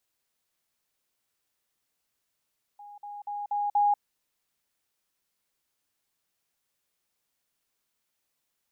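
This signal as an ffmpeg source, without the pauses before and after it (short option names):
-f lavfi -i "aevalsrc='pow(10,(-43.5+6*floor(t/0.24))/20)*sin(2*PI*822*t)*clip(min(mod(t,0.24),0.19-mod(t,0.24))/0.005,0,1)':d=1.2:s=44100"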